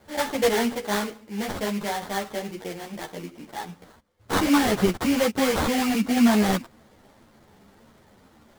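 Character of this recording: aliases and images of a low sample rate 2600 Hz, jitter 20%; a shimmering, thickened sound

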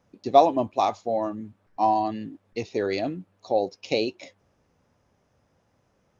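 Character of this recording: noise floor -69 dBFS; spectral tilt -4.0 dB/oct

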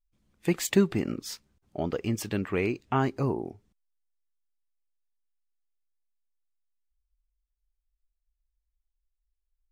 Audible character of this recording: noise floor -82 dBFS; spectral tilt -5.5 dB/oct

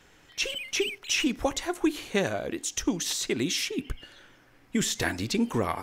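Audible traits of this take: noise floor -58 dBFS; spectral tilt -3.0 dB/oct

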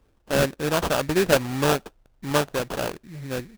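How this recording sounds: aliases and images of a low sample rate 2100 Hz, jitter 20%

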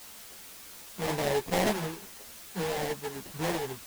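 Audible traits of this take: aliases and images of a low sample rate 1300 Hz, jitter 20%; random-step tremolo; a quantiser's noise floor 8-bit, dither triangular; a shimmering, thickened sound

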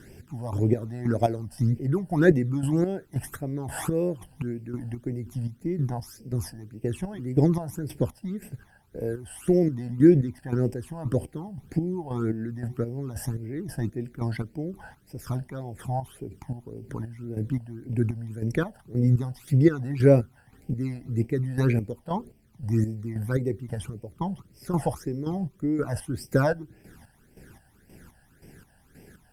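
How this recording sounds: chopped level 1.9 Hz, depth 65%, duty 40%; a quantiser's noise floor 12-bit, dither none; phasing stages 12, 1.8 Hz, lowest notch 370–1300 Hz; Opus

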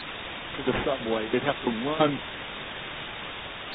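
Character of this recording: aliases and images of a low sample rate 4500 Hz; tremolo saw down 3 Hz, depth 95%; a quantiser's noise floor 6-bit, dither triangular; AAC

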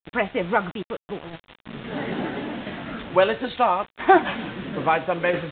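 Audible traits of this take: tremolo saw down 0.75 Hz, depth 55%; a quantiser's noise floor 6-bit, dither none; µ-law

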